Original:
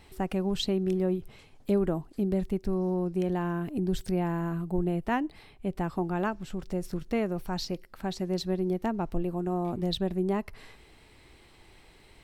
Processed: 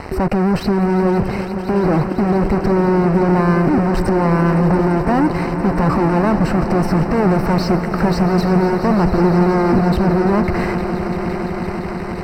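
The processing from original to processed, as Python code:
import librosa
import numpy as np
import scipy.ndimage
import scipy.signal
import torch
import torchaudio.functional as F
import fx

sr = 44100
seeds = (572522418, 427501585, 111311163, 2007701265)

y = fx.highpass(x, sr, hz=54.0, slope=6)
y = fx.over_compress(y, sr, threshold_db=-32.0, ratio=-1.0)
y = fx.fuzz(y, sr, gain_db=50.0, gate_db=-51.0)
y = scipy.signal.lfilter(np.full(13, 1.0 / 13), 1.0, y)
y = fx.echo_swell(y, sr, ms=171, loudest=5, wet_db=-14)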